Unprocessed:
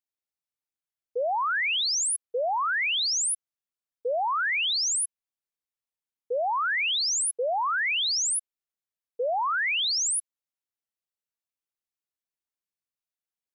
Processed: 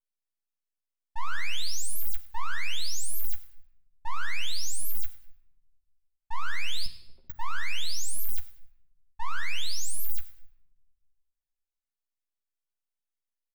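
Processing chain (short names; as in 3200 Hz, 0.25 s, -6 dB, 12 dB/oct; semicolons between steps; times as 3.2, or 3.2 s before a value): frequency shift -35 Hz; full-wave rectifier; 6.86–7.3 Butterworth band-pass 310 Hz, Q 1; doubler 13 ms -5.5 dB; feedback echo 0.101 s, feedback 34%, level -19.5 dB; on a send at -9 dB: reverb RT60 0.95 s, pre-delay 5 ms; on the sum: ending taper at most 350 dB/s; gain -3.5 dB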